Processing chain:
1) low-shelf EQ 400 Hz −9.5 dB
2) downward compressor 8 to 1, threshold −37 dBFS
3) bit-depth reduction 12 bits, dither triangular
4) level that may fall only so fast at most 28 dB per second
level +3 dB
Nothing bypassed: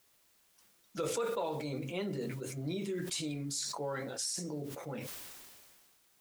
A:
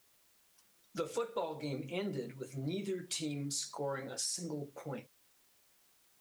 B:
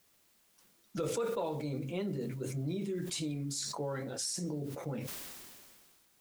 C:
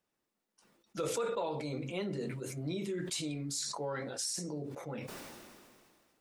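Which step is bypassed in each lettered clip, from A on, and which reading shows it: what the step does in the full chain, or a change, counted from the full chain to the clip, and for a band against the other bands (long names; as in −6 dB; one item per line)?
4, change in momentary loudness spread −3 LU
1, 125 Hz band +4.5 dB
3, distortion level −28 dB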